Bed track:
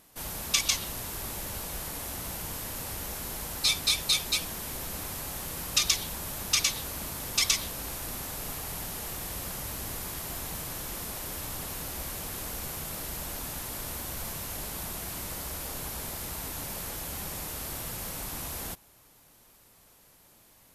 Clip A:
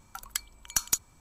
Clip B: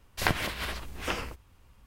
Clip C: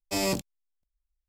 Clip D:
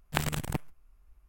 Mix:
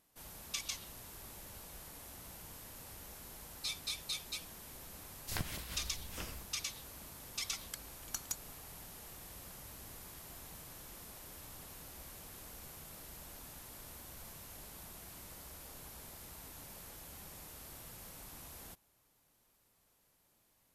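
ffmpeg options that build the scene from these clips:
-filter_complex "[0:a]volume=0.188[s0];[2:a]bass=f=250:g=9,treble=f=4000:g=13,atrim=end=1.86,asetpts=PTS-STARTPTS,volume=0.141,afade=t=in:d=0.004:c=hsin,afade=t=out:st=1.856:d=0.004:c=hsin,adelay=5100[s1];[1:a]atrim=end=1.2,asetpts=PTS-STARTPTS,volume=0.2,afade=t=in:d=0.004:c=hsin,afade=t=out:st=1.196:d=0.004:c=hsin,adelay=325458S[s2];[s0][s1][s2]amix=inputs=3:normalize=0"

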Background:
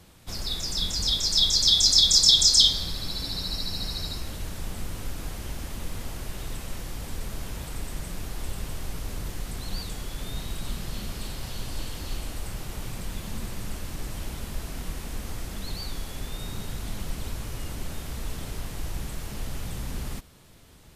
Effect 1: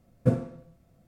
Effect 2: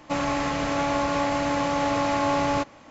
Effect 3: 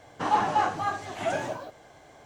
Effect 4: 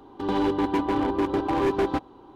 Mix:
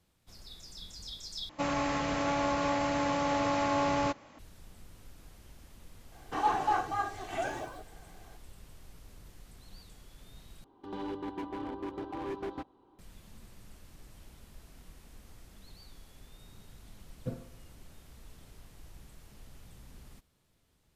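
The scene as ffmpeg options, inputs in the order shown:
-filter_complex "[0:a]volume=0.112[s0];[3:a]aecho=1:1:2.6:0.52[s1];[s0]asplit=3[s2][s3][s4];[s2]atrim=end=1.494[s5];[2:a]atrim=end=2.9,asetpts=PTS-STARTPTS,volume=0.531[s6];[s3]atrim=start=4.386:end=10.644[s7];[4:a]atrim=end=2.35,asetpts=PTS-STARTPTS,volume=0.188[s8];[s4]atrim=start=12.986[s9];[s1]atrim=end=2.25,asetpts=PTS-STARTPTS,volume=0.473,afade=t=in:d=0.004:c=hsin,afade=t=out:st=2.246:d=0.004:c=hsin,adelay=6120[s10];[1:a]atrim=end=1.07,asetpts=PTS-STARTPTS,volume=0.178,afade=t=in:d=0.004:c=hsin,afade=t=out:st=1.066:d=0.004:c=hsin,adelay=749700S[s11];[s5][s6]acrossfade=d=0.004:c1=hsin:c2=hsin[s12];[s12][s7]acrossfade=d=0.004:c1=hsin:c2=hsin[s13];[s13][s8]acrossfade=d=0.004:c1=hsin:c2=hsin[s14];[s14][s9]acrossfade=d=0.004:c1=hsin:c2=hsin[s15];[s15][s10][s11]amix=inputs=3:normalize=0"

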